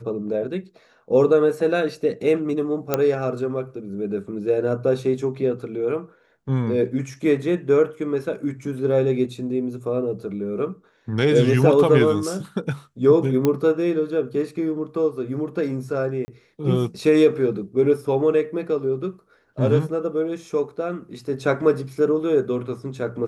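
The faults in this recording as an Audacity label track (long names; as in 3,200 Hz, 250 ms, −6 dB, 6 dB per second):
2.940000	2.940000	click −5 dBFS
13.450000	13.450000	click −8 dBFS
16.250000	16.280000	drop-out 30 ms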